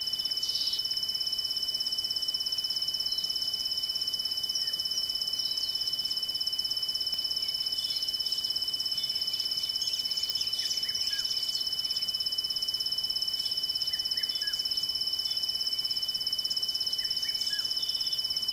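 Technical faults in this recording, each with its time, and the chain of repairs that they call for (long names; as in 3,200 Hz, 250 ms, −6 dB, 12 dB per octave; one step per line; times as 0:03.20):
surface crackle 53 per second −36 dBFS
whistle 3,000 Hz −36 dBFS
0:07.14: click −21 dBFS
0:10.30: click −14 dBFS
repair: click removal
notch filter 3,000 Hz, Q 30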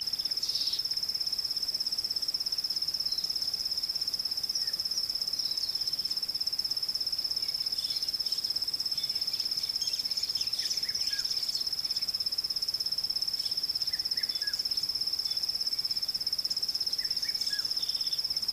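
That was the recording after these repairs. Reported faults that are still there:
0:07.14: click
0:10.30: click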